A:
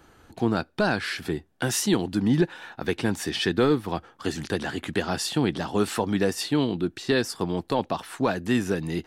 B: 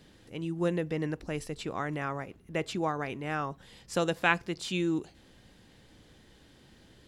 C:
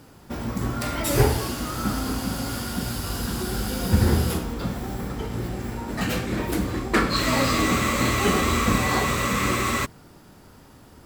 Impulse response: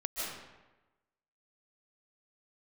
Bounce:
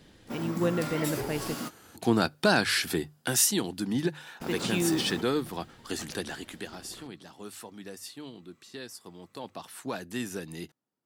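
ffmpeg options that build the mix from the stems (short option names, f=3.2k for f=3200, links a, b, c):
-filter_complex "[0:a]highpass=97,bandreject=f=50:t=h:w=6,bandreject=f=100:t=h:w=6,bandreject=f=150:t=h:w=6,crystalizer=i=2.5:c=0,adelay=1650,volume=9dB,afade=t=out:st=2.84:d=0.67:silence=0.446684,afade=t=out:st=6.14:d=0.69:silence=0.223872,afade=t=in:st=9.19:d=0.69:silence=0.354813[a];[1:a]volume=1.5dB,asplit=3[b][c][d];[b]atrim=end=1.55,asetpts=PTS-STARTPTS,afade=t=out:st=1.546:d=0.004:c=hsin[e];[c]atrim=start=1.55:end=4.4,asetpts=PTS-STARTPTS,volume=0[f];[d]atrim=start=4.4,asetpts=PTS-STARTPTS,afade=t=in:d=0.004:c=hsin[g];[e][f][g]concat=n=3:v=0:a=1,asplit=2[h][i];[2:a]highpass=f=140:w=0.5412,highpass=f=140:w=1.3066,acompressor=threshold=-40dB:ratio=1.5,alimiter=limit=-22.5dB:level=0:latency=1:release=245,volume=-0.5dB[j];[i]apad=whole_len=487408[k];[j][k]sidechaingate=range=-38dB:threshold=-52dB:ratio=16:detection=peak[l];[a][h][l]amix=inputs=3:normalize=0"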